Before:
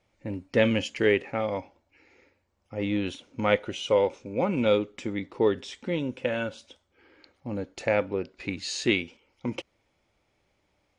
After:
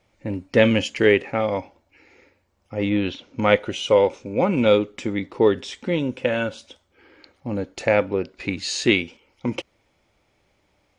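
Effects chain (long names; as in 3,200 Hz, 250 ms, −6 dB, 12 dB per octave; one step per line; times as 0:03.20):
0:02.89–0:03.40: low-pass filter 3,400 Hz → 7,200 Hz 24 dB per octave
level +6 dB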